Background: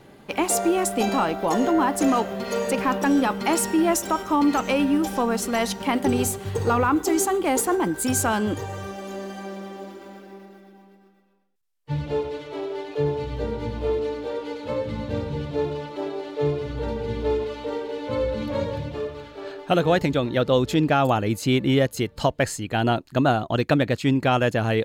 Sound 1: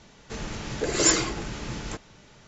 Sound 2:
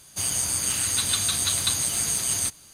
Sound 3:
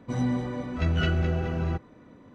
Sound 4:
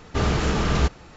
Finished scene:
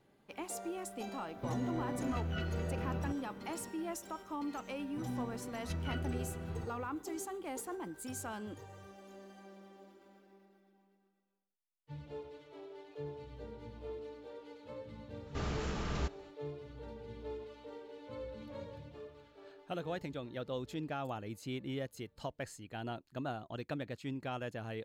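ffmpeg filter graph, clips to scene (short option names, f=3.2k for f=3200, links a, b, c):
-filter_complex "[3:a]asplit=2[a][b];[0:a]volume=-20dB[c];[a]acompressor=threshold=-33dB:ratio=6:attack=3.2:release=140:knee=1:detection=peak,atrim=end=2.34,asetpts=PTS-STARTPTS,volume=-1.5dB,afade=t=in:d=0.004:c=hsin,afade=t=out:st=2.336:d=0.004:c=hsin,adelay=1350[d];[b]atrim=end=2.34,asetpts=PTS-STARTPTS,volume=-14dB,afade=t=in:d=0.004:c=hsin,afade=t=out:st=2.336:d=0.004:c=hsin,adelay=4880[e];[4:a]atrim=end=1.16,asetpts=PTS-STARTPTS,volume=-15.5dB,afade=t=in:d=0.1,afade=t=out:st=1.06:d=0.1,adelay=15200[f];[c][d][e][f]amix=inputs=4:normalize=0"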